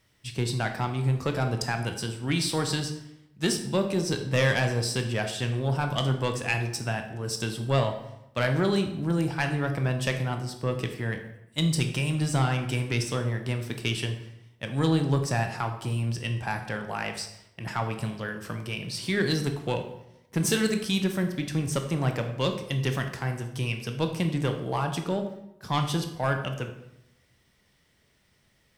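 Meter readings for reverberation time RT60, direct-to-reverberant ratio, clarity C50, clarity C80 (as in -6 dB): 0.85 s, 5.0 dB, 8.5 dB, 11.0 dB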